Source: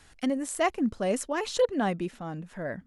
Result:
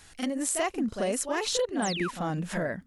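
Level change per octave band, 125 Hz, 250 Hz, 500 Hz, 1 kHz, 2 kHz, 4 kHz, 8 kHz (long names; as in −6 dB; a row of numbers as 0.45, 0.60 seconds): +2.5, −1.0, −2.0, −1.0, +1.5, +5.0, +6.5 decibels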